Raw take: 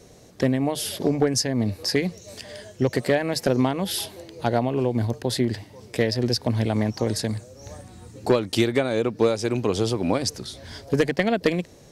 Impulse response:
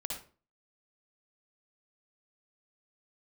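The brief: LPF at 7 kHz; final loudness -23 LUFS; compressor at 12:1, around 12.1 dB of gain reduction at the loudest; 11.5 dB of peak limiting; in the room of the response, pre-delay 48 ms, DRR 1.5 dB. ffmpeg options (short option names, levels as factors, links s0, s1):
-filter_complex "[0:a]lowpass=7000,acompressor=threshold=0.0447:ratio=12,alimiter=limit=0.0631:level=0:latency=1,asplit=2[s0][s1];[1:a]atrim=start_sample=2205,adelay=48[s2];[s1][s2]afir=irnorm=-1:irlink=0,volume=0.75[s3];[s0][s3]amix=inputs=2:normalize=0,volume=3.35"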